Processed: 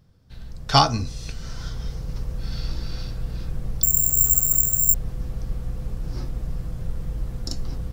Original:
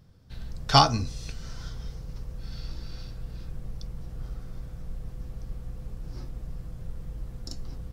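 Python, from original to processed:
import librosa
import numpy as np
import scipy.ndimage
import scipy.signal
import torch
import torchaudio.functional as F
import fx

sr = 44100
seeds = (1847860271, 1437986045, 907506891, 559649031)

y = fx.rider(x, sr, range_db=5, speed_s=2.0)
y = fx.resample_bad(y, sr, factor=6, down='none', up='zero_stuff', at=(3.83, 4.94))
y = y * librosa.db_to_amplitude(3.5)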